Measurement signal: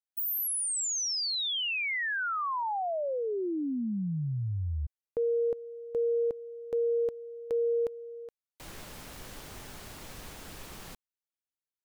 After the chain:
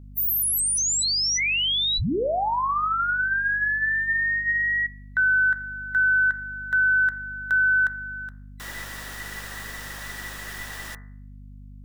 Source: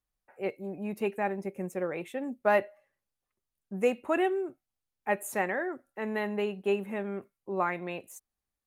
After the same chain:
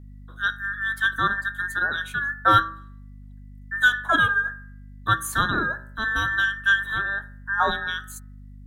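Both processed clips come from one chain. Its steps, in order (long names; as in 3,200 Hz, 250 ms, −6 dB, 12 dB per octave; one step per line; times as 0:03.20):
frequency inversion band by band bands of 2,000 Hz
mains hum 50 Hz, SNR 18 dB
hum removal 64.19 Hz, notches 33
level +8 dB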